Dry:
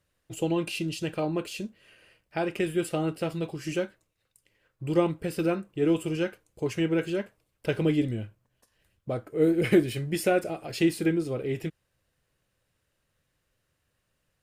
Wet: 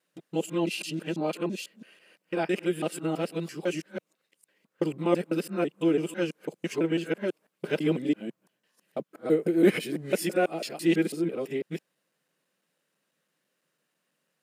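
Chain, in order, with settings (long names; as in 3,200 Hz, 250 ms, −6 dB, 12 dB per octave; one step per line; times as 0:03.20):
reversed piece by piece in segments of 166 ms
linear-phase brick-wall high-pass 150 Hz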